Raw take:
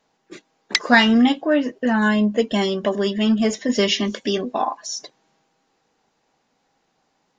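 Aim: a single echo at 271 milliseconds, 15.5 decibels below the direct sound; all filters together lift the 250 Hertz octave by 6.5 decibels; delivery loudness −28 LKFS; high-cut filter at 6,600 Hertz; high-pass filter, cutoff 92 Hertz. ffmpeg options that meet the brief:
ffmpeg -i in.wav -af "highpass=92,lowpass=6600,equalizer=frequency=250:width_type=o:gain=7.5,aecho=1:1:271:0.168,volume=-13dB" out.wav

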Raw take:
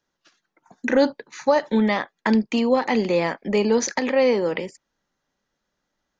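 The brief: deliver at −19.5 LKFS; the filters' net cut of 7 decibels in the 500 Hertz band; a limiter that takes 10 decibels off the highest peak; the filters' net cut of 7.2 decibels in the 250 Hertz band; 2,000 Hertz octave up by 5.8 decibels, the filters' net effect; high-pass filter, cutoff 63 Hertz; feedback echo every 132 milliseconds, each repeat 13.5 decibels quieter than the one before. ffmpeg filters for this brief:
ffmpeg -i in.wav -af "highpass=63,equalizer=frequency=250:width_type=o:gain=-7,equalizer=frequency=500:width_type=o:gain=-6.5,equalizer=frequency=2000:width_type=o:gain=7,alimiter=limit=-14dB:level=0:latency=1,aecho=1:1:132|264:0.211|0.0444,volume=6.5dB" out.wav

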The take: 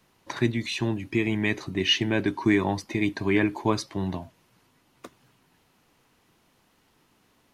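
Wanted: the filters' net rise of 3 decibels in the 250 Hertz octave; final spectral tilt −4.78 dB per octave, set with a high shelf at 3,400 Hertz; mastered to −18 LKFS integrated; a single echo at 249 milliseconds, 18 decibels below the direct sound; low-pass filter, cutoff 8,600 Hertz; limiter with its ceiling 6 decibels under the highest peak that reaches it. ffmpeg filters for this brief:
ffmpeg -i in.wav -af "lowpass=8600,equalizer=frequency=250:width_type=o:gain=4,highshelf=frequency=3400:gain=8,alimiter=limit=-13dB:level=0:latency=1,aecho=1:1:249:0.126,volume=7.5dB" out.wav

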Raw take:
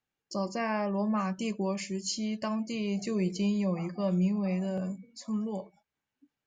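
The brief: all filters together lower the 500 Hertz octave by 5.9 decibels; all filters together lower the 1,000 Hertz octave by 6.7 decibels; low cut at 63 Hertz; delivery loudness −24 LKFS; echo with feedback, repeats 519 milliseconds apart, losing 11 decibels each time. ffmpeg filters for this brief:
ffmpeg -i in.wav -af "highpass=63,equalizer=frequency=500:width_type=o:gain=-6,equalizer=frequency=1000:width_type=o:gain=-6.5,aecho=1:1:519|1038|1557:0.282|0.0789|0.0221,volume=9dB" out.wav

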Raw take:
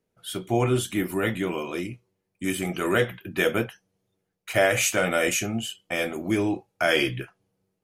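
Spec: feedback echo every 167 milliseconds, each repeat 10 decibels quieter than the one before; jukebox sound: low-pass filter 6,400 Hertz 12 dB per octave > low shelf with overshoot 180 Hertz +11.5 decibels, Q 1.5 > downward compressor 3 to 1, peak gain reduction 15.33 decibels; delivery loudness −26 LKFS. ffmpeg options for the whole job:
ffmpeg -i in.wav -af "lowpass=6400,lowshelf=frequency=180:width_type=q:width=1.5:gain=11.5,aecho=1:1:167|334|501|668:0.316|0.101|0.0324|0.0104,acompressor=threshold=-32dB:ratio=3,volume=7.5dB" out.wav

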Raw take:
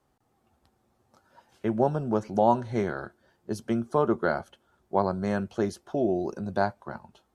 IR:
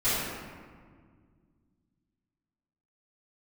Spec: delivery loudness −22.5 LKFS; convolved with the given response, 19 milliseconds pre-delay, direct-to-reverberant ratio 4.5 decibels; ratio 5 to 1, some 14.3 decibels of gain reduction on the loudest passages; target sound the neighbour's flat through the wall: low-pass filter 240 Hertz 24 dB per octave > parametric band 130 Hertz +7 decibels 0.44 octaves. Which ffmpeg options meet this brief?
-filter_complex "[0:a]acompressor=threshold=-34dB:ratio=5,asplit=2[link_01][link_02];[1:a]atrim=start_sample=2205,adelay=19[link_03];[link_02][link_03]afir=irnorm=-1:irlink=0,volume=-17.5dB[link_04];[link_01][link_04]amix=inputs=2:normalize=0,lowpass=frequency=240:width=0.5412,lowpass=frequency=240:width=1.3066,equalizer=frequency=130:width_type=o:width=0.44:gain=7,volume=18.5dB"

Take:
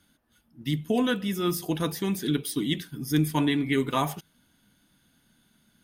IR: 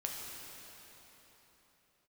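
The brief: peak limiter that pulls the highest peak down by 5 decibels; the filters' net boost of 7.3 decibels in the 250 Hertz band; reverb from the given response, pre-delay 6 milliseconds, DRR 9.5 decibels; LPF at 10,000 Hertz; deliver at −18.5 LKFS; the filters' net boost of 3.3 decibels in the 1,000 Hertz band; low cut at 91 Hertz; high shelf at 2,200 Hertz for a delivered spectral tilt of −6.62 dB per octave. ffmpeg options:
-filter_complex "[0:a]highpass=91,lowpass=10000,equalizer=frequency=250:width_type=o:gain=9,equalizer=frequency=1000:width_type=o:gain=4.5,highshelf=frequency=2200:gain=-4.5,alimiter=limit=-13dB:level=0:latency=1,asplit=2[link_01][link_02];[1:a]atrim=start_sample=2205,adelay=6[link_03];[link_02][link_03]afir=irnorm=-1:irlink=0,volume=-11dB[link_04];[link_01][link_04]amix=inputs=2:normalize=0,volume=5dB"

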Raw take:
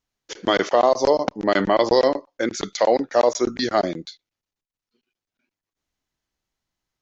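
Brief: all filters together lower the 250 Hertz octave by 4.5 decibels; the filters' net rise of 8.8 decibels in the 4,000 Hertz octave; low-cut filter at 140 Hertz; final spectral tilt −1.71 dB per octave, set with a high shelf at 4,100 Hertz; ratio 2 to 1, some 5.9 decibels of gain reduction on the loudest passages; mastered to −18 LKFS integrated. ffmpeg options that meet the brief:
ffmpeg -i in.wav -af "highpass=140,equalizer=frequency=250:width_type=o:gain=-6,equalizer=frequency=4000:width_type=o:gain=8.5,highshelf=frequency=4100:gain=4,acompressor=threshold=-23dB:ratio=2,volume=7dB" out.wav

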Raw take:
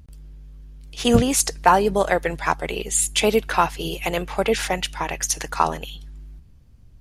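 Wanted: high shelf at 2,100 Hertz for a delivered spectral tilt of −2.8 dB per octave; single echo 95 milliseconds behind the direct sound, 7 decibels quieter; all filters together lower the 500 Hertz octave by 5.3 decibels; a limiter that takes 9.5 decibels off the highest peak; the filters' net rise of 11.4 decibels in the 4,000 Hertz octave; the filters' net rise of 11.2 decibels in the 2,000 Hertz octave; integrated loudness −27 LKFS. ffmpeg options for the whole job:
ffmpeg -i in.wav -af "equalizer=frequency=500:width_type=o:gain=-7.5,equalizer=frequency=2000:width_type=o:gain=9,highshelf=frequency=2100:gain=7.5,equalizer=frequency=4000:width_type=o:gain=4.5,alimiter=limit=-4.5dB:level=0:latency=1,aecho=1:1:95:0.447,volume=-10dB" out.wav

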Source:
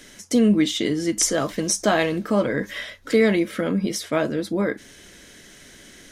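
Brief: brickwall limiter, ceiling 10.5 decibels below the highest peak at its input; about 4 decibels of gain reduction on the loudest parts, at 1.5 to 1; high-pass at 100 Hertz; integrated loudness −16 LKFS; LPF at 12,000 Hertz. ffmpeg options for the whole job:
ffmpeg -i in.wav -af "highpass=100,lowpass=12000,acompressor=threshold=-24dB:ratio=1.5,volume=13.5dB,alimiter=limit=-6.5dB:level=0:latency=1" out.wav

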